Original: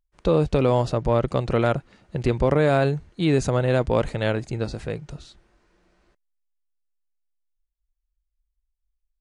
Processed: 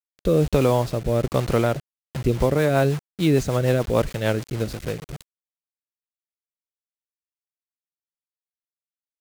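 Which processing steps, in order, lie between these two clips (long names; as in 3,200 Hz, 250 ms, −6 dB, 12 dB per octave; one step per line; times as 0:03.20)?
0:01.75–0:02.37: flanger swept by the level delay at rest 5.9 ms, full sweep at −19 dBFS
bit reduction 6 bits
rotating-speaker cabinet horn 1.2 Hz, later 6.7 Hz, at 0:01.86
level +2 dB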